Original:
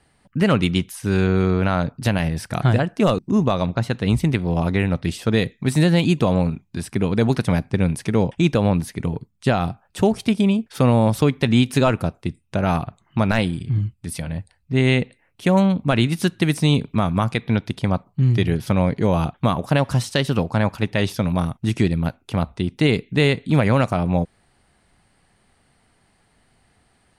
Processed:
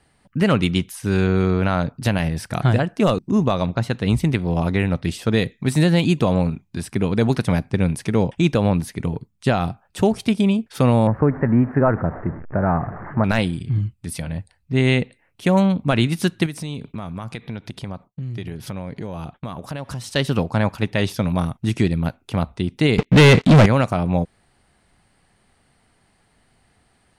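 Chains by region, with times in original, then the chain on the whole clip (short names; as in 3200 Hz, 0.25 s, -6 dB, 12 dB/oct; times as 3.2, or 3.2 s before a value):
11.07–13.24 zero-crossing step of -26.5 dBFS + elliptic low-pass 1800 Hz, stop band 50 dB
16.46–20.16 expander -45 dBFS + compressor 4:1, threshold -28 dBFS
22.98–23.66 sample leveller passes 5 + air absorption 51 m
whole clip: dry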